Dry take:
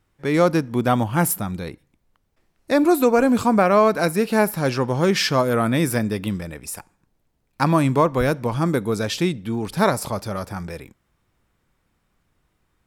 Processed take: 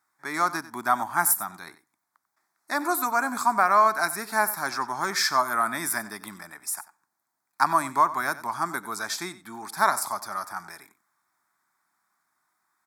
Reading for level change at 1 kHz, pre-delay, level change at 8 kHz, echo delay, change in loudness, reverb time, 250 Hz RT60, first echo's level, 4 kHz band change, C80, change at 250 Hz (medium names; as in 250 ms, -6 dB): +0.5 dB, no reverb, +1.5 dB, 93 ms, -5.0 dB, no reverb, no reverb, -16.5 dB, -4.5 dB, no reverb, -17.0 dB